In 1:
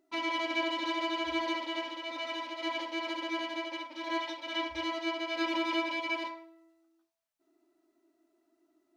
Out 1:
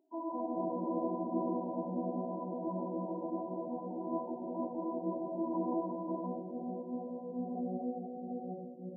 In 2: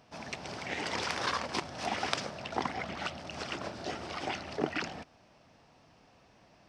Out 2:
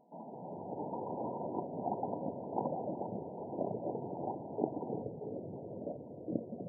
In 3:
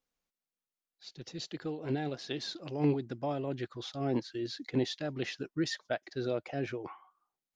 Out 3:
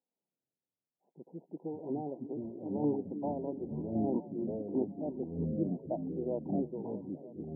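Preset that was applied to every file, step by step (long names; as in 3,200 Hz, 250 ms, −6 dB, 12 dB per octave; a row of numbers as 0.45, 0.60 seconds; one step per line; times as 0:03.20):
linear-phase brick-wall band-pass 150–1,000 Hz
echo through a band-pass that steps 314 ms, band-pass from 260 Hz, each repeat 0.7 octaves, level −10 dB
delay with pitch and tempo change per echo 164 ms, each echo −5 semitones, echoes 2
level −2 dB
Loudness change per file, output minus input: −4.5, −4.5, −0.5 LU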